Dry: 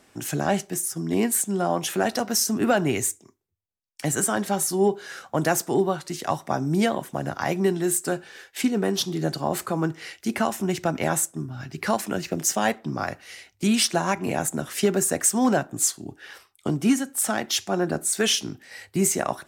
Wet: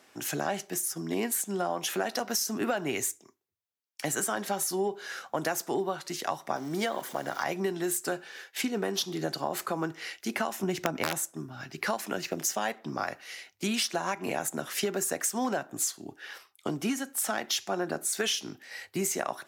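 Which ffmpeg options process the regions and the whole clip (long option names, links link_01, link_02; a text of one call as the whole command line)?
ffmpeg -i in.wav -filter_complex "[0:a]asettb=1/sr,asplit=3[link_01][link_02][link_03];[link_01]atrim=end=6.564[link_04];[link_02]atrim=start=6.56:end=7.44,asetpts=PTS-STARTPTS,afade=type=in:duration=0.004:curve=qsin,afade=type=out:start_time=0.876:duration=0.004:curve=qsin,aeval=exprs='val(0)+0.5*0.0126*sgn(val(0))':channel_layout=same,equalizer=frequency=83:width=0.47:gain=-8,bandreject=frequency=2600:width=8.2[link_05];[link_03]atrim=start=7.436[link_06];[link_04][link_05]acrossfade=duration=0.004:curve1=hsin:curve2=qsin[link_07];[link_07][link_06]acrossfade=duration=0.004:curve1=qsin:curve2=hsin,asettb=1/sr,asplit=3[link_08][link_09][link_10];[link_08]atrim=end=10.634[link_11];[link_09]atrim=start=10.63:end=11.18,asetpts=PTS-STARTPTS,afade=type=in:duration=0.004:curve=qsin,afade=type=out:start_time=0.546:duration=0.004:curve=qsin,lowshelf=frequency=450:gain=7,aeval=exprs='(mod(2.82*val(0)+1,2)-1)/2.82':channel_layout=same[link_12];[link_10]atrim=start=11.176[link_13];[link_11][link_12]acrossfade=duration=0.004:curve1=hsin:curve2=qsin[link_14];[link_14][link_13]acrossfade=duration=0.004:curve1=qsin:curve2=hsin,highpass=frequency=450:poles=1,equalizer=frequency=8500:width_type=o:width=0.35:gain=-6,acompressor=threshold=-26dB:ratio=6" out.wav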